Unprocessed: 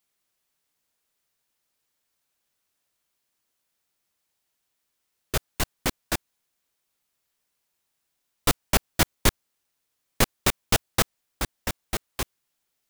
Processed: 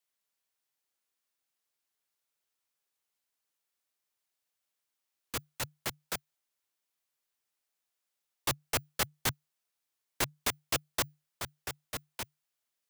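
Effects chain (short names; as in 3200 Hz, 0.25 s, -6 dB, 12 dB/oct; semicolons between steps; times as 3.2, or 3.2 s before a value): frequency shift -150 Hz; low shelf 210 Hz -12 dB; gain -7.5 dB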